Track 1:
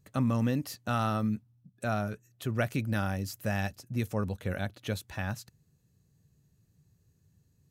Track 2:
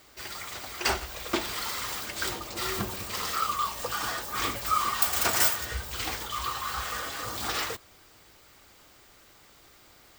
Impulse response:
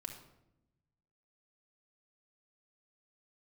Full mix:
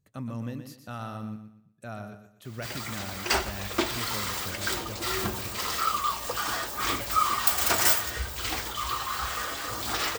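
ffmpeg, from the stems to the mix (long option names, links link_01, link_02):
-filter_complex "[0:a]volume=-8.5dB,asplit=2[link_01][link_02];[link_02]volume=-8.5dB[link_03];[1:a]adelay=2450,volume=-0.5dB,asplit=2[link_04][link_05];[link_05]volume=-6.5dB[link_06];[2:a]atrim=start_sample=2205[link_07];[link_06][link_07]afir=irnorm=-1:irlink=0[link_08];[link_03]aecho=0:1:121|242|363|484|605:1|0.32|0.102|0.0328|0.0105[link_09];[link_01][link_04][link_08][link_09]amix=inputs=4:normalize=0"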